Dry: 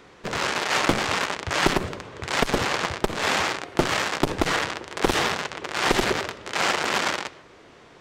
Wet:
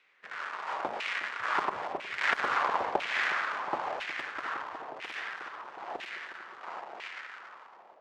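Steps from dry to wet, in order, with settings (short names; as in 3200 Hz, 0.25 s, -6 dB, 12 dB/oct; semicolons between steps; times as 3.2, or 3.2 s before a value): Doppler pass-by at 2.42, 18 m/s, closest 14 m; split-band echo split 950 Hz, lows 0.363 s, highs 0.279 s, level -6 dB; LFO band-pass saw down 1 Hz 670–2500 Hz; gain +2 dB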